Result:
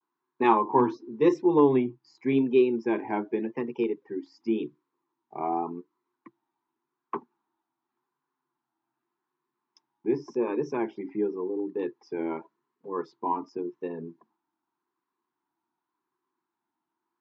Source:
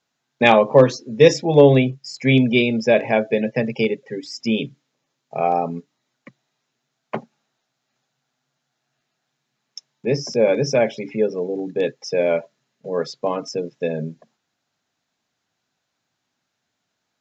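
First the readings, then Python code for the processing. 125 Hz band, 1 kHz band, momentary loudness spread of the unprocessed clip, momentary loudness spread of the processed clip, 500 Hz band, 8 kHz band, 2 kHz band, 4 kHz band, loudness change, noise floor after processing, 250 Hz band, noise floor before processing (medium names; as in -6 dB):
-17.5 dB, -4.5 dB, 16 LU, 16 LU, -10.0 dB, no reading, -16.0 dB, under -20 dB, -9.0 dB, under -85 dBFS, -5.5 dB, -77 dBFS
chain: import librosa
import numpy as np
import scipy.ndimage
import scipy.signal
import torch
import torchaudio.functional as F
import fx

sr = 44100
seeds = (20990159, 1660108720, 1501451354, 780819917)

y = fx.double_bandpass(x, sr, hz=580.0, octaves=1.5)
y = fx.vibrato(y, sr, rate_hz=0.88, depth_cents=89.0)
y = y * librosa.db_to_amplitude(4.5)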